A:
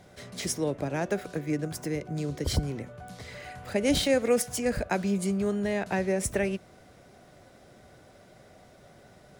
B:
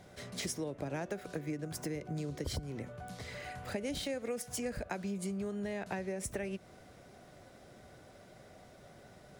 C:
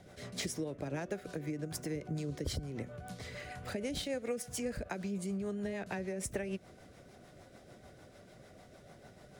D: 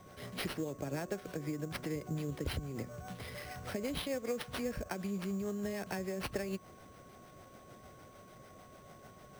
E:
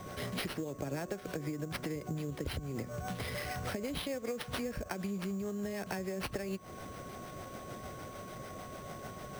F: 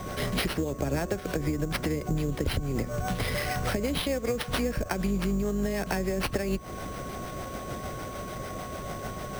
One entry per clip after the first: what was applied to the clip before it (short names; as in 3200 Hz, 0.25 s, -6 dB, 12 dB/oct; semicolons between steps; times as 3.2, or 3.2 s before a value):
compressor 12:1, threshold -32 dBFS, peak gain reduction 13.5 dB; gain -2 dB
rotary speaker horn 6.7 Hz; gain +2 dB
whine 1100 Hz -59 dBFS; sample-rate reducer 7100 Hz, jitter 0%
compressor, threshold -45 dBFS, peak gain reduction 13.5 dB; gain +10 dB
octaver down 2 oct, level -4 dB; gain +8.5 dB